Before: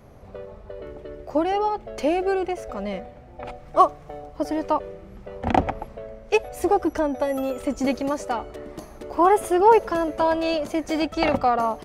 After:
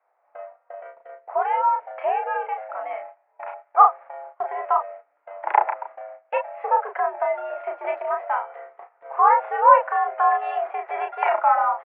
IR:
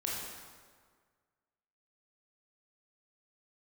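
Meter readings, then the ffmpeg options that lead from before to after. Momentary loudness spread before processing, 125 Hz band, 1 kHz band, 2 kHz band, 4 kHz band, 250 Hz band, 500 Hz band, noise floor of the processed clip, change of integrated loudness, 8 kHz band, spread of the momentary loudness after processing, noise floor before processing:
20 LU, under -40 dB, +4.0 dB, +2.0 dB, under -15 dB, under -30 dB, -4.0 dB, -67 dBFS, +1.0 dB, under -40 dB, 22 LU, -45 dBFS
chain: -filter_complex "[0:a]highpass=f=550:t=q:w=0.5412,highpass=f=550:t=q:w=1.307,lowpass=f=2100:t=q:w=0.5176,lowpass=f=2100:t=q:w=0.7071,lowpass=f=2100:t=q:w=1.932,afreqshift=95,agate=range=0.141:threshold=0.00794:ratio=16:detection=peak,asplit=2[s0][s1];[s1]adelay=34,volume=0.596[s2];[s0][s2]amix=inputs=2:normalize=0,volume=1.26"

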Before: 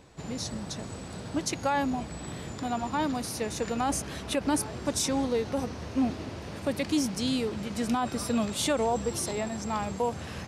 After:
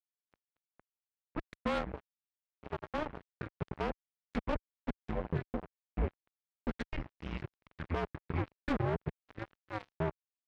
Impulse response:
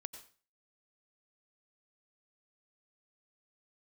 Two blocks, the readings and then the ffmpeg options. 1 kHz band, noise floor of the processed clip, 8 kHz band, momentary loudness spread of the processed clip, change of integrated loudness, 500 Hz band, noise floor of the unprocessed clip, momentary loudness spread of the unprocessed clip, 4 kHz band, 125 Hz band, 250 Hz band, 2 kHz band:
-10.5 dB, under -85 dBFS, under -35 dB, 12 LU, -9.0 dB, -9.0 dB, -41 dBFS, 9 LU, -17.5 dB, -3.0 dB, -11.5 dB, -7.0 dB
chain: -af "highpass=f=180:t=q:w=0.5412,highpass=f=180:t=q:w=1.307,lowpass=f=2500:t=q:w=0.5176,lowpass=f=2500:t=q:w=0.7071,lowpass=f=2500:t=q:w=1.932,afreqshift=-320,acrusher=bits=3:mix=0:aa=0.5,highpass=f=41:p=1,volume=0.531"

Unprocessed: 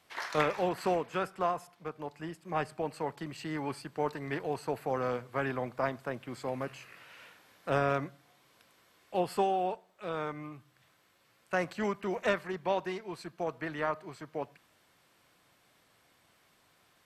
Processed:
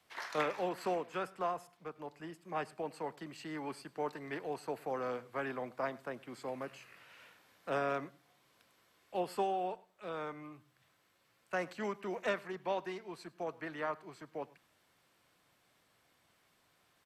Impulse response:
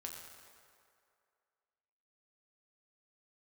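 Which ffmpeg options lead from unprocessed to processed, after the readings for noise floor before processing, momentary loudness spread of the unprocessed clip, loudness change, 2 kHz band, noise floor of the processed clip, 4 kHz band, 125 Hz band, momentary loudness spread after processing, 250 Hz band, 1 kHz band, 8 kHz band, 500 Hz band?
-68 dBFS, 14 LU, -5.0 dB, -5.0 dB, -73 dBFS, -5.0 dB, -10.5 dB, 14 LU, -6.0 dB, -5.0 dB, -5.0 dB, -5.0 dB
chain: -filter_complex "[0:a]acrossover=split=170|400|4600[s0][s1][s2][s3];[s0]acompressor=threshold=0.00112:ratio=6[s4];[s4][s1][s2][s3]amix=inputs=4:normalize=0,aecho=1:1:103:0.0708,volume=0.562"

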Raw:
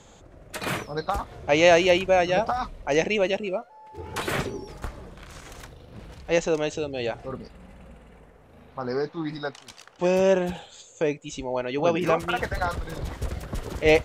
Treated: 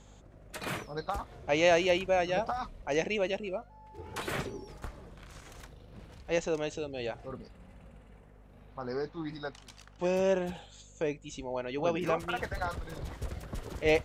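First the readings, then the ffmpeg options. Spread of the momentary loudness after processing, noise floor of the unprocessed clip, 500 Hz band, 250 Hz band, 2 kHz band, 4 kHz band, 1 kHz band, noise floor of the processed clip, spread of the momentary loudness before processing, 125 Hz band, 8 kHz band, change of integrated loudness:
22 LU, -52 dBFS, -7.5 dB, -7.5 dB, -7.5 dB, -7.5 dB, -7.5 dB, -55 dBFS, 22 LU, -7.5 dB, -7.5 dB, -7.5 dB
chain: -af "aeval=exprs='val(0)+0.00398*(sin(2*PI*50*n/s)+sin(2*PI*2*50*n/s)/2+sin(2*PI*3*50*n/s)/3+sin(2*PI*4*50*n/s)/4+sin(2*PI*5*50*n/s)/5)':c=same,volume=0.422"

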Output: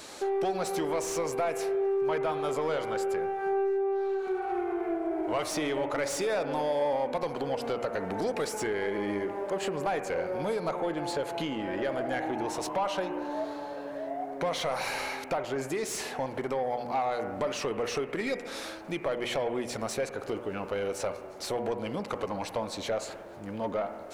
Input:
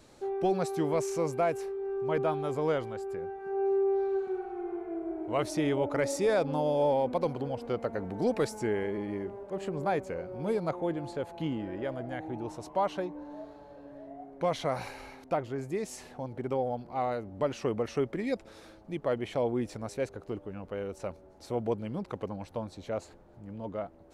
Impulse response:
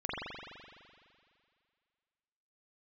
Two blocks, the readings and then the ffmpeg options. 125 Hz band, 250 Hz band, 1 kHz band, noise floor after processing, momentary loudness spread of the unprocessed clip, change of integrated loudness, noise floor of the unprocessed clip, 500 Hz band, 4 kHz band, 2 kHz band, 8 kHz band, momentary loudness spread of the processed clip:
-4.5 dB, -0.5 dB, +3.0 dB, -42 dBFS, 12 LU, +1.0 dB, -54 dBFS, +1.0 dB, +8.0 dB, +5.5 dB, +7.5 dB, 6 LU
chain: -filter_complex "[0:a]bandreject=f=120.5:t=h:w=4,bandreject=f=241:t=h:w=4,bandreject=f=361.5:t=h:w=4,bandreject=f=482:t=h:w=4,bandreject=f=602.5:t=h:w=4,bandreject=f=723:t=h:w=4,bandreject=f=843.5:t=h:w=4,bandreject=f=964:t=h:w=4,bandreject=f=1084.5:t=h:w=4,bandreject=f=1205:t=h:w=4,bandreject=f=1325.5:t=h:w=4,bandreject=f=1446:t=h:w=4,bandreject=f=1566.5:t=h:w=4,bandreject=f=1687:t=h:w=4,bandreject=f=1807.5:t=h:w=4,bandreject=f=1928:t=h:w=4,bandreject=f=2048.5:t=h:w=4,bandreject=f=2169:t=h:w=4,bandreject=f=2289.5:t=h:w=4,bandreject=f=2410:t=h:w=4,bandreject=f=2530.5:t=h:w=4,bandreject=f=2651:t=h:w=4,bandreject=f=2771.5:t=h:w=4,bandreject=f=2892:t=h:w=4,acompressor=threshold=0.0158:ratio=6,crystalizer=i=4:c=0,asplit=2[s0][s1];[s1]highpass=f=720:p=1,volume=10,asoftclip=type=tanh:threshold=0.112[s2];[s0][s2]amix=inputs=2:normalize=0,lowpass=f=2000:p=1,volume=0.501,asplit=2[s3][s4];[1:a]atrim=start_sample=2205,afade=t=out:st=0.31:d=0.01,atrim=end_sample=14112,asetrate=31752,aresample=44100[s5];[s4][s5]afir=irnorm=-1:irlink=0,volume=0.126[s6];[s3][s6]amix=inputs=2:normalize=0"

